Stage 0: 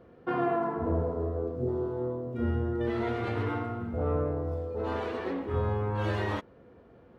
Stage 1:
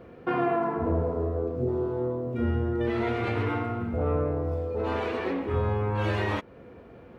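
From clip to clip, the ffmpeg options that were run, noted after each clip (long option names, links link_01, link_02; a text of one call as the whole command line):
ffmpeg -i in.wav -filter_complex "[0:a]equalizer=frequency=2400:width=3.6:gain=6,asplit=2[link_01][link_02];[link_02]acompressor=threshold=-38dB:ratio=6,volume=2dB[link_03];[link_01][link_03]amix=inputs=2:normalize=0" out.wav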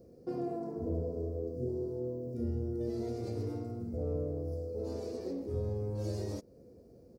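ffmpeg -i in.wav -af "firequalizer=gain_entry='entry(530,0);entry(930,-18);entry(1500,-22);entry(3200,-19);entry(4800,11)':delay=0.05:min_phase=1,volume=-8dB" out.wav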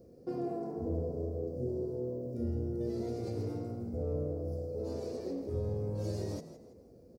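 ffmpeg -i in.wav -filter_complex "[0:a]asplit=4[link_01][link_02][link_03][link_04];[link_02]adelay=164,afreqshift=61,volume=-13dB[link_05];[link_03]adelay=328,afreqshift=122,volume=-22.4dB[link_06];[link_04]adelay=492,afreqshift=183,volume=-31.7dB[link_07];[link_01][link_05][link_06][link_07]amix=inputs=4:normalize=0" out.wav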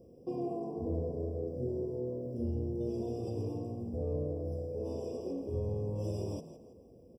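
ffmpeg -i in.wav -af "afftfilt=real='re*eq(mod(floor(b*sr/1024/1200),2),0)':imag='im*eq(mod(floor(b*sr/1024/1200),2),0)':win_size=1024:overlap=0.75" out.wav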